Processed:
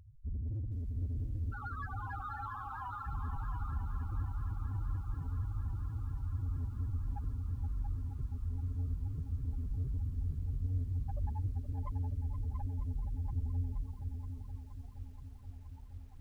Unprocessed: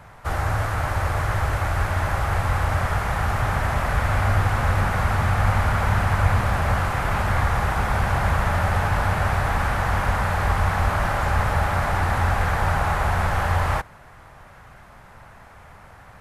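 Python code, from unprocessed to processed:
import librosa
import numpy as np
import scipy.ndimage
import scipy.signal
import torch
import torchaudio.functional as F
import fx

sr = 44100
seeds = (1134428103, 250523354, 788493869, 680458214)

y = fx.highpass(x, sr, hz=810.0, slope=12, at=(1.5, 3.07))
y = fx.over_compress(y, sr, threshold_db=-24.0, ratio=-1.0)
y = fx.sample_hold(y, sr, seeds[0], rate_hz=6100.0, jitter_pct=0)
y = fx.chorus_voices(y, sr, voices=4, hz=1.0, base_ms=25, depth_ms=3.0, mix_pct=25)
y = fx.spec_topn(y, sr, count=1)
y = 10.0 ** (-35.0 / 20.0) * np.tanh(y / 10.0 ** (-35.0 / 20.0))
y = y + 10.0 ** (-6.5 / 20.0) * np.pad(y, (int(683 * sr / 1000.0), 0))[:len(y)]
y = fx.echo_crushed(y, sr, ms=473, feedback_pct=80, bits=11, wet_db=-11)
y = y * 10.0 ** (1.0 / 20.0)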